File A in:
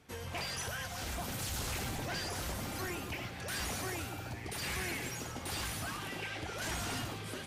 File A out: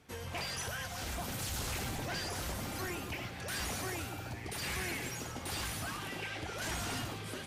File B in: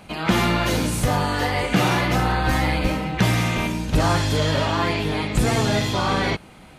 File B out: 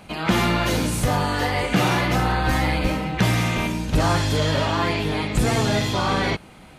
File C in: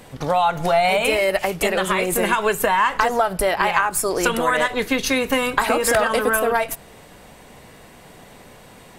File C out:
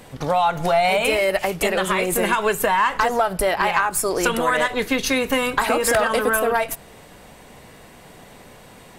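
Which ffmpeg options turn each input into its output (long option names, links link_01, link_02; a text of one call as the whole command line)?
ffmpeg -i in.wav -af "asoftclip=type=tanh:threshold=-6dB" out.wav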